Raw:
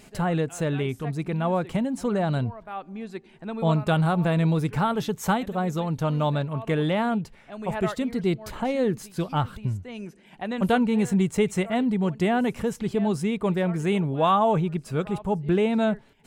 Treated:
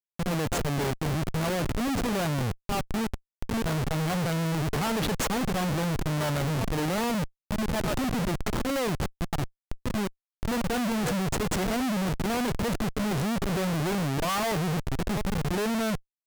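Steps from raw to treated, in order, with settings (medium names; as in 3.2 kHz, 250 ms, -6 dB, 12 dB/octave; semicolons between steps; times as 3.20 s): high-pass 140 Hz 24 dB/octave; slow attack 147 ms; Schmitt trigger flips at -34.5 dBFS; vibrato 1.2 Hz 13 cents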